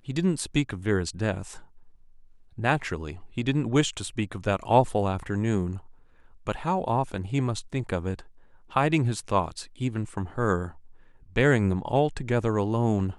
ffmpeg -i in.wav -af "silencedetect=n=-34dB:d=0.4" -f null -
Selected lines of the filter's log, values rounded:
silence_start: 1.58
silence_end: 2.58 | silence_duration: 1.00
silence_start: 5.78
silence_end: 6.47 | silence_duration: 0.69
silence_start: 8.20
silence_end: 8.75 | silence_duration: 0.55
silence_start: 10.69
silence_end: 11.36 | silence_duration: 0.67